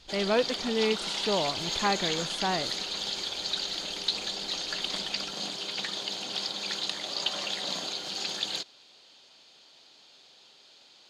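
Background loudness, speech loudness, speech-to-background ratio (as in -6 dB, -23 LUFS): -31.0 LUFS, -30.5 LUFS, 0.5 dB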